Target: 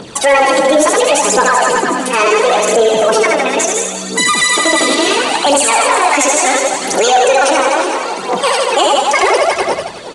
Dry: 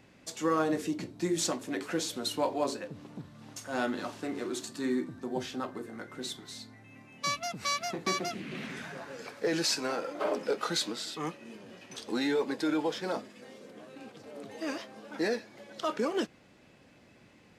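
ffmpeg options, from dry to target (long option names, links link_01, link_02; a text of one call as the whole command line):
ffmpeg -i in.wav -filter_complex "[0:a]bandreject=frequency=3000:width=19,asplit=2[link_01][link_02];[link_02]aecho=0:1:130|273|430.3|603.3|793.7:0.631|0.398|0.251|0.158|0.1[link_03];[link_01][link_03]amix=inputs=2:normalize=0,asetrate=76440,aresample=44100,aphaser=in_gain=1:out_gain=1:delay=4:decay=0.58:speed=0.72:type=triangular,asoftclip=type=tanh:threshold=-17.5dB,aresample=22050,aresample=44100,asplit=2[link_04][link_05];[link_05]aecho=0:1:372:0.2[link_06];[link_04][link_06]amix=inputs=2:normalize=0,alimiter=level_in=26.5dB:limit=-1dB:release=50:level=0:latency=1,volume=-2dB" out.wav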